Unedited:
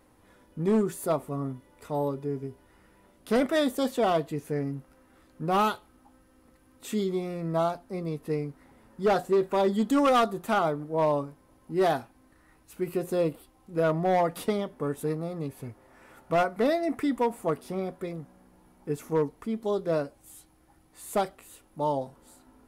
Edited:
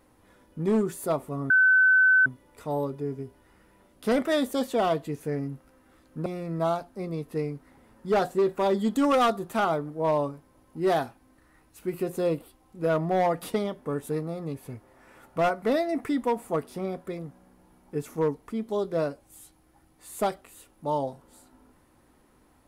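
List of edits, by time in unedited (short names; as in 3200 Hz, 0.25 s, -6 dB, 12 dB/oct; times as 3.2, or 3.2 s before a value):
1.5 add tone 1520 Hz -15.5 dBFS 0.76 s
5.5–7.2 cut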